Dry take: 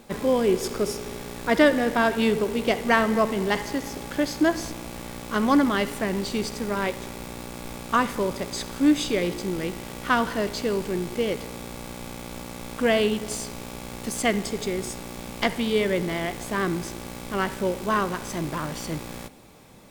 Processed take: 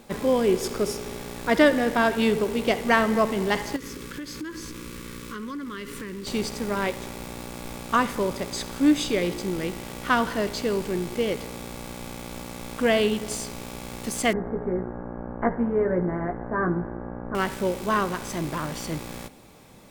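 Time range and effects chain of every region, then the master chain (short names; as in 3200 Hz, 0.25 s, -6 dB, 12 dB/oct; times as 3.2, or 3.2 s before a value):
3.76–6.27 Chebyshev band-stop 470–1100 Hz + compressor, threshold -32 dBFS
14.33–17.35 elliptic low-pass 1600 Hz, stop band 60 dB + doubler 17 ms -4 dB
whole clip: dry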